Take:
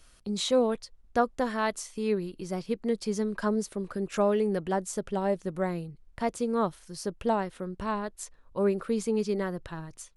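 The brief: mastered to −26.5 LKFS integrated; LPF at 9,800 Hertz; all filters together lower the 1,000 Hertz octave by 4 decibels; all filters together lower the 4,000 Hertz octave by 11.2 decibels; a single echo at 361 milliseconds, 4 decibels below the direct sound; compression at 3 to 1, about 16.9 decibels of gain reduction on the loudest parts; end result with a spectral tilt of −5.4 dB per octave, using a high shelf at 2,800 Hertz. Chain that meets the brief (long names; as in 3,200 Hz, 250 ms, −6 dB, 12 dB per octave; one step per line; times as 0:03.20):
low-pass filter 9,800 Hz
parametric band 1,000 Hz −4 dB
high-shelf EQ 2,800 Hz −9 dB
parametric band 4,000 Hz −6 dB
downward compressor 3 to 1, threshold −45 dBFS
single-tap delay 361 ms −4 dB
level +17.5 dB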